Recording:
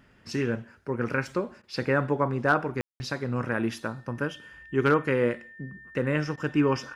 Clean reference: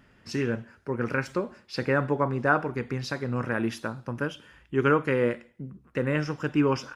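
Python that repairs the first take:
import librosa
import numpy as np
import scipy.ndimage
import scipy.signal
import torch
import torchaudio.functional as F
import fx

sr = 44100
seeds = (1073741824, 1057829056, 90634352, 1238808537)

y = fx.fix_declip(x, sr, threshold_db=-12.0)
y = fx.notch(y, sr, hz=1800.0, q=30.0)
y = fx.fix_ambience(y, sr, seeds[0], print_start_s=1.24, print_end_s=1.74, start_s=2.81, end_s=3.0)
y = fx.fix_interpolate(y, sr, at_s=(1.62, 6.36), length_ms=13.0)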